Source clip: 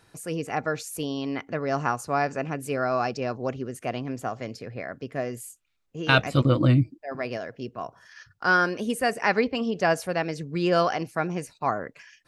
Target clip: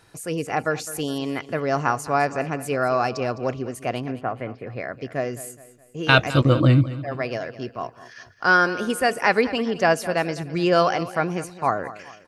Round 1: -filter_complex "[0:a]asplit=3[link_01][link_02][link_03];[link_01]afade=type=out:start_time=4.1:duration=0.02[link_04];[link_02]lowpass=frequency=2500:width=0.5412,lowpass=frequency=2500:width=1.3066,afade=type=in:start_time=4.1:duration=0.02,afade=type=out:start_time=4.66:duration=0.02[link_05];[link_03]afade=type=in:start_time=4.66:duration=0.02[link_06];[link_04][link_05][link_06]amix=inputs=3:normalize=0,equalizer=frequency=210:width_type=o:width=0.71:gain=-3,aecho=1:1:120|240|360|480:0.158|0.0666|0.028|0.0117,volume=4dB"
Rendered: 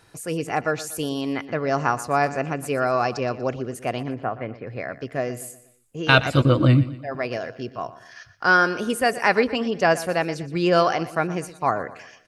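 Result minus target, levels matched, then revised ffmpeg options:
echo 89 ms early
-filter_complex "[0:a]asplit=3[link_01][link_02][link_03];[link_01]afade=type=out:start_time=4.1:duration=0.02[link_04];[link_02]lowpass=frequency=2500:width=0.5412,lowpass=frequency=2500:width=1.3066,afade=type=in:start_time=4.1:duration=0.02,afade=type=out:start_time=4.66:duration=0.02[link_05];[link_03]afade=type=in:start_time=4.66:duration=0.02[link_06];[link_04][link_05][link_06]amix=inputs=3:normalize=0,equalizer=frequency=210:width_type=o:width=0.71:gain=-3,aecho=1:1:209|418|627|836:0.158|0.0666|0.028|0.0117,volume=4dB"

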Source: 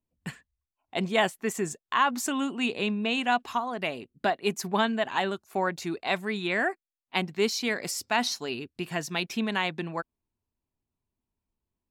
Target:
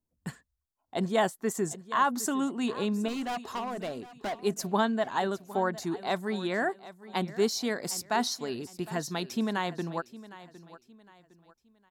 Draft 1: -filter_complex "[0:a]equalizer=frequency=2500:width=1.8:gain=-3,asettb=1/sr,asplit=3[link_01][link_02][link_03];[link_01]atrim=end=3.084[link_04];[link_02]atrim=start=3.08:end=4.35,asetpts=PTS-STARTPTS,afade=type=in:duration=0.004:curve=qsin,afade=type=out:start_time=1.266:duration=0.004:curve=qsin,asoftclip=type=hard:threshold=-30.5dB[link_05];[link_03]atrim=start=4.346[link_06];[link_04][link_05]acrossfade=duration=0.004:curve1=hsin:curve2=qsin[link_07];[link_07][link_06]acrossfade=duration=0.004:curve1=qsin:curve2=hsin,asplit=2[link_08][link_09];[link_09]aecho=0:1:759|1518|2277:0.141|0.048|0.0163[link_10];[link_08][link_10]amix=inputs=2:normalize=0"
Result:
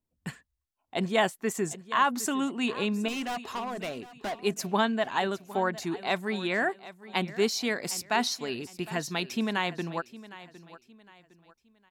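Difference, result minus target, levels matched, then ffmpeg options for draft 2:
2,000 Hz band +3.0 dB
-filter_complex "[0:a]equalizer=frequency=2500:width=1.8:gain=-12.5,asettb=1/sr,asplit=3[link_01][link_02][link_03];[link_01]atrim=end=3.084[link_04];[link_02]atrim=start=3.08:end=4.35,asetpts=PTS-STARTPTS,afade=type=in:duration=0.004:curve=qsin,afade=type=out:start_time=1.266:duration=0.004:curve=qsin,asoftclip=type=hard:threshold=-30.5dB[link_05];[link_03]atrim=start=4.346[link_06];[link_04][link_05]acrossfade=duration=0.004:curve1=hsin:curve2=qsin[link_07];[link_07][link_06]acrossfade=duration=0.004:curve1=qsin:curve2=hsin,asplit=2[link_08][link_09];[link_09]aecho=0:1:759|1518|2277:0.141|0.048|0.0163[link_10];[link_08][link_10]amix=inputs=2:normalize=0"

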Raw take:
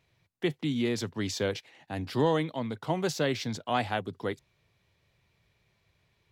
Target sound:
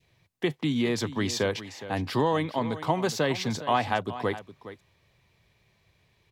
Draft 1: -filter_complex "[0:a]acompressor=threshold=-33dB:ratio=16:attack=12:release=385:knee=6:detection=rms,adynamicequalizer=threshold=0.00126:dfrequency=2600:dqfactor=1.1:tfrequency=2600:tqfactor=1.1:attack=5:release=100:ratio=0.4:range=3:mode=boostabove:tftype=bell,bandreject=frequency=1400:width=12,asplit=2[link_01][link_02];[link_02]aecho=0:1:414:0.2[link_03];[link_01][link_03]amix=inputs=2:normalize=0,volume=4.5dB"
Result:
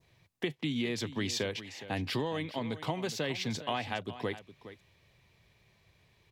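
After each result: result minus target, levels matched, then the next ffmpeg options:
downward compressor: peak gain reduction +8.5 dB; 1,000 Hz band −3.5 dB
-filter_complex "[0:a]acompressor=threshold=-24dB:ratio=16:attack=12:release=385:knee=6:detection=rms,adynamicequalizer=threshold=0.00126:dfrequency=2600:dqfactor=1.1:tfrequency=2600:tqfactor=1.1:attack=5:release=100:ratio=0.4:range=3:mode=boostabove:tftype=bell,bandreject=frequency=1400:width=12,asplit=2[link_01][link_02];[link_02]aecho=0:1:414:0.2[link_03];[link_01][link_03]amix=inputs=2:normalize=0,volume=4.5dB"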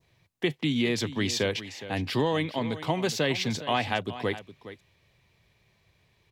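1,000 Hz band −3.5 dB
-filter_complex "[0:a]acompressor=threshold=-24dB:ratio=16:attack=12:release=385:knee=6:detection=rms,adynamicequalizer=threshold=0.00126:dfrequency=1100:dqfactor=1.1:tfrequency=1100:tqfactor=1.1:attack=5:release=100:ratio=0.4:range=3:mode=boostabove:tftype=bell,bandreject=frequency=1400:width=12,asplit=2[link_01][link_02];[link_02]aecho=0:1:414:0.2[link_03];[link_01][link_03]amix=inputs=2:normalize=0,volume=4.5dB"

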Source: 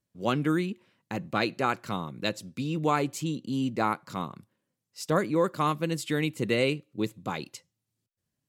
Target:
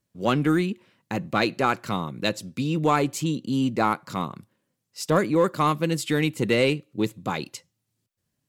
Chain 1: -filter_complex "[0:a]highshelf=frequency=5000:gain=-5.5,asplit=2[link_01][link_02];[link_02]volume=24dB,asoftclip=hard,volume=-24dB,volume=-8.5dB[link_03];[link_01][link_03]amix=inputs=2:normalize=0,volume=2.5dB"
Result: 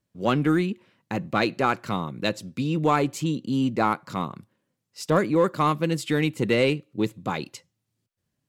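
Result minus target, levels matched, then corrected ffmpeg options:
8,000 Hz band −3.5 dB
-filter_complex "[0:a]asplit=2[link_01][link_02];[link_02]volume=24dB,asoftclip=hard,volume=-24dB,volume=-8.5dB[link_03];[link_01][link_03]amix=inputs=2:normalize=0,volume=2.5dB"

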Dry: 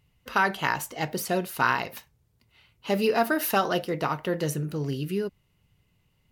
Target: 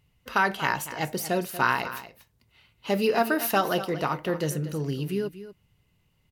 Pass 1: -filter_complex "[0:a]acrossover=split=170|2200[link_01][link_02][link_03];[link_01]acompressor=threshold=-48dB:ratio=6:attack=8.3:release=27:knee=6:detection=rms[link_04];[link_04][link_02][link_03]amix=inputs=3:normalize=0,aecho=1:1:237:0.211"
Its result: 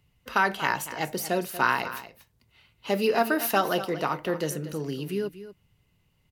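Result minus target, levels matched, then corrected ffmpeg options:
downward compressor: peak gain reduction +14.5 dB
-af "aecho=1:1:237:0.211"

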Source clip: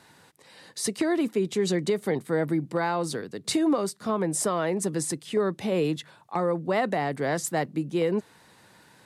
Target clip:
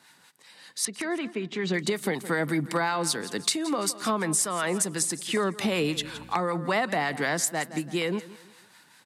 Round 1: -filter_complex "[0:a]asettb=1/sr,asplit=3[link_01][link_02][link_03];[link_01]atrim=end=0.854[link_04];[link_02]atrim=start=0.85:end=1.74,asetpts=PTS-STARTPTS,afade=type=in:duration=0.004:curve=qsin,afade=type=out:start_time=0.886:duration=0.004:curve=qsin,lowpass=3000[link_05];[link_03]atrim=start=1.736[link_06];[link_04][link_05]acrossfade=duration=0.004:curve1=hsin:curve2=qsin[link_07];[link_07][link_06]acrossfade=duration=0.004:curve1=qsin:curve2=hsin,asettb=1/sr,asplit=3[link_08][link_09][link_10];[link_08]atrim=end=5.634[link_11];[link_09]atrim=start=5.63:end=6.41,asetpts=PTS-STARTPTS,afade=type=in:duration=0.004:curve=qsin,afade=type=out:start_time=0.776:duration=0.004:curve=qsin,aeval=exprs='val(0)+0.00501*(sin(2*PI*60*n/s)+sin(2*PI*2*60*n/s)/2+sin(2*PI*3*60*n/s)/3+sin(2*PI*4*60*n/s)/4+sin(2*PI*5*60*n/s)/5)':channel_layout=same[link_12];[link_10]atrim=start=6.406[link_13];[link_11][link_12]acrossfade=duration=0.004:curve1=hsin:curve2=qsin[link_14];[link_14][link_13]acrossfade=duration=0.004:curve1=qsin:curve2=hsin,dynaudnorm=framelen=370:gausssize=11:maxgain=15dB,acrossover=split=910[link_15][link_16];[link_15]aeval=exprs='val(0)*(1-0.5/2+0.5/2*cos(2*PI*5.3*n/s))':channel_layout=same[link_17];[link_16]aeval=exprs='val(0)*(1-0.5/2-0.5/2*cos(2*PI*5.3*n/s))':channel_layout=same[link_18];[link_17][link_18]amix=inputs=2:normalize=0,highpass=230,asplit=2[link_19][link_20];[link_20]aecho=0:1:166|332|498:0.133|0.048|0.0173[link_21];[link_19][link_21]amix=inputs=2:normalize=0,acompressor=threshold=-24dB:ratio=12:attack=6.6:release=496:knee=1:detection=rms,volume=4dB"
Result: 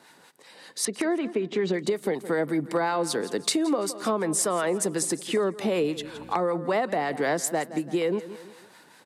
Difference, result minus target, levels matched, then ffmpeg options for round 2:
500 Hz band +3.5 dB
-filter_complex "[0:a]asettb=1/sr,asplit=3[link_01][link_02][link_03];[link_01]atrim=end=0.854[link_04];[link_02]atrim=start=0.85:end=1.74,asetpts=PTS-STARTPTS,afade=type=in:duration=0.004:curve=qsin,afade=type=out:start_time=0.886:duration=0.004:curve=qsin,lowpass=3000[link_05];[link_03]atrim=start=1.736[link_06];[link_04][link_05]acrossfade=duration=0.004:curve1=hsin:curve2=qsin[link_07];[link_07][link_06]acrossfade=duration=0.004:curve1=qsin:curve2=hsin,asettb=1/sr,asplit=3[link_08][link_09][link_10];[link_08]atrim=end=5.634[link_11];[link_09]atrim=start=5.63:end=6.41,asetpts=PTS-STARTPTS,afade=type=in:duration=0.004:curve=qsin,afade=type=out:start_time=0.776:duration=0.004:curve=qsin,aeval=exprs='val(0)+0.00501*(sin(2*PI*60*n/s)+sin(2*PI*2*60*n/s)/2+sin(2*PI*3*60*n/s)/3+sin(2*PI*4*60*n/s)/4+sin(2*PI*5*60*n/s)/5)':channel_layout=same[link_12];[link_10]atrim=start=6.406[link_13];[link_11][link_12]acrossfade=duration=0.004:curve1=hsin:curve2=qsin[link_14];[link_14][link_13]acrossfade=duration=0.004:curve1=qsin:curve2=hsin,dynaudnorm=framelen=370:gausssize=11:maxgain=15dB,acrossover=split=910[link_15][link_16];[link_15]aeval=exprs='val(0)*(1-0.5/2+0.5/2*cos(2*PI*5.3*n/s))':channel_layout=same[link_17];[link_16]aeval=exprs='val(0)*(1-0.5/2-0.5/2*cos(2*PI*5.3*n/s))':channel_layout=same[link_18];[link_17][link_18]amix=inputs=2:normalize=0,highpass=230,equalizer=frequency=460:width=0.69:gain=-11.5,asplit=2[link_19][link_20];[link_20]aecho=0:1:166|332|498:0.133|0.048|0.0173[link_21];[link_19][link_21]amix=inputs=2:normalize=0,acompressor=threshold=-24dB:ratio=12:attack=6.6:release=496:knee=1:detection=rms,volume=4dB"

